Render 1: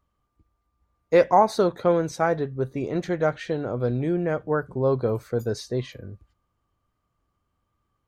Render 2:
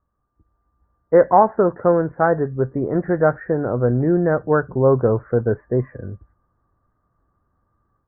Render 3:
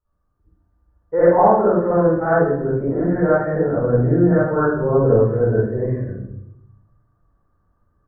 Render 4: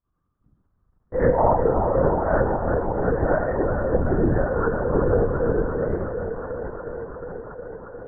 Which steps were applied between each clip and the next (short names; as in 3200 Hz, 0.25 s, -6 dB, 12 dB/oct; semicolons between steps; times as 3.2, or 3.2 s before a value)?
steep low-pass 1800 Hz 72 dB/oct; AGC gain up to 7.5 dB
reverb RT60 0.75 s, pre-delay 46 ms, DRR -11 dB; gain -13 dB
band-limited delay 0.359 s, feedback 81%, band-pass 910 Hz, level -6 dB; LPC vocoder at 8 kHz whisper; gain -5.5 dB